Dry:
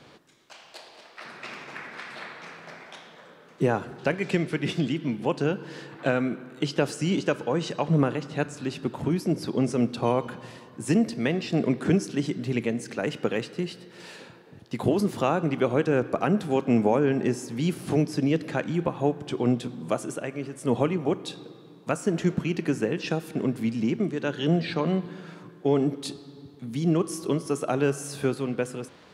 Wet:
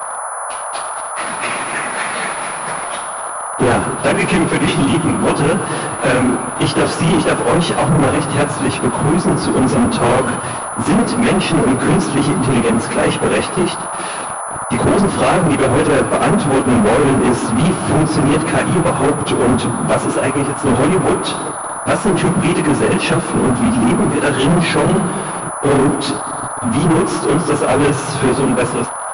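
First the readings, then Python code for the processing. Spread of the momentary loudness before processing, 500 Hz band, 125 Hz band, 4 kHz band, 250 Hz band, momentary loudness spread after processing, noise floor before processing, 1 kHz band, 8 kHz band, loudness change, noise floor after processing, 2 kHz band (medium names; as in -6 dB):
16 LU, +11.5 dB, +11.5 dB, +14.0 dB, +11.5 dB, 8 LU, -51 dBFS, +17.0 dB, +20.0 dB, +11.5 dB, -24 dBFS, +15.0 dB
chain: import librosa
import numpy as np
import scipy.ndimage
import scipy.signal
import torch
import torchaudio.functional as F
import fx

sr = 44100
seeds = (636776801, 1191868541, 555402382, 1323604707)

y = fx.phase_scramble(x, sr, seeds[0], window_ms=50)
y = fx.leveller(y, sr, passes=5)
y = fx.dmg_noise_band(y, sr, seeds[1], low_hz=580.0, high_hz=1400.0, level_db=-25.0)
y = fx.pwm(y, sr, carrier_hz=10000.0)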